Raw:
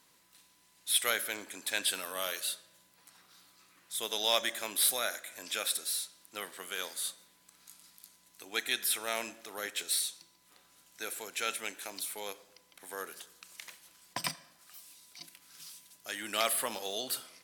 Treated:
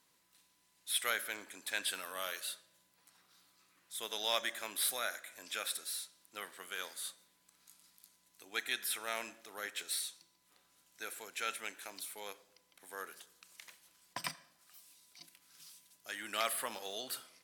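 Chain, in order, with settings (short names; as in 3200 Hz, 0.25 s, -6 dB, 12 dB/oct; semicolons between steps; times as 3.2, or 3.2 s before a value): dynamic EQ 1500 Hz, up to +5 dB, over -49 dBFS, Q 0.87; gain -7 dB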